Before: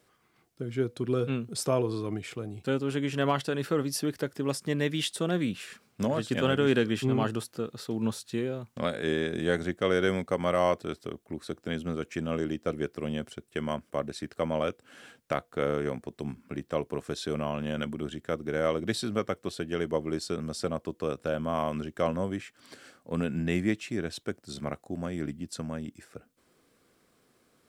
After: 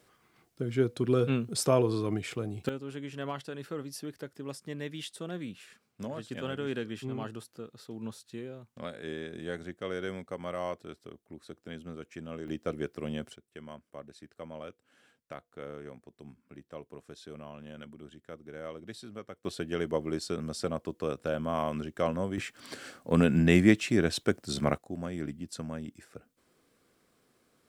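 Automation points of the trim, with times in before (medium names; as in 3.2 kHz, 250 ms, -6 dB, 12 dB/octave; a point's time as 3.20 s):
+2 dB
from 2.69 s -10 dB
from 12.48 s -3 dB
from 13.36 s -14 dB
from 19.45 s -1.5 dB
from 22.38 s +6.5 dB
from 24.78 s -2.5 dB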